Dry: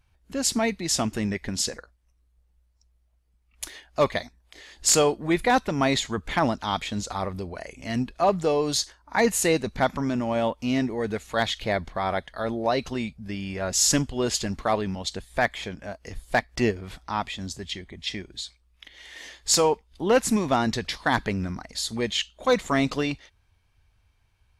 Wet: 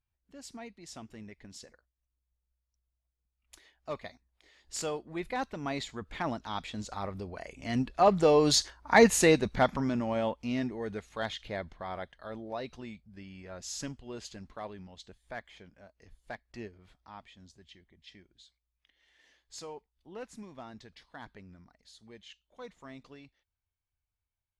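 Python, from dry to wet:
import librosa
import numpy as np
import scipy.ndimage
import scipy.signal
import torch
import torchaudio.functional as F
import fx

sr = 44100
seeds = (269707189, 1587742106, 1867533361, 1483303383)

y = fx.doppler_pass(x, sr, speed_mps=9, closest_m=5.0, pass_at_s=8.75)
y = fx.high_shelf(y, sr, hz=9700.0, db=-12.0)
y = y * librosa.db_to_amplitude(3.0)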